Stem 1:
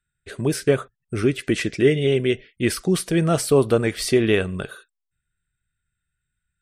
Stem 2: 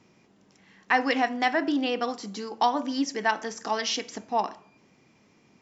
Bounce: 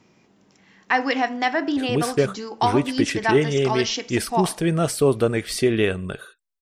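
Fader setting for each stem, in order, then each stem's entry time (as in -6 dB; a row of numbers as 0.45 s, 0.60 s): -1.5 dB, +2.5 dB; 1.50 s, 0.00 s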